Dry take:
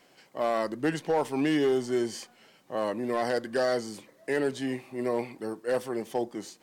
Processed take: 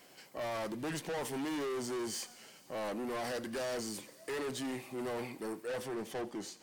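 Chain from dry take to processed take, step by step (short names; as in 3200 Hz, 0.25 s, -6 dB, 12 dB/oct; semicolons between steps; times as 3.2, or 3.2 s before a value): high shelf 7600 Hz +10.5 dB, from 5.67 s -2 dB; soft clip -35 dBFS, distortion -5 dB; thin delay 87 ms, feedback 79%, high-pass 2100 Hz, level -18.5 dB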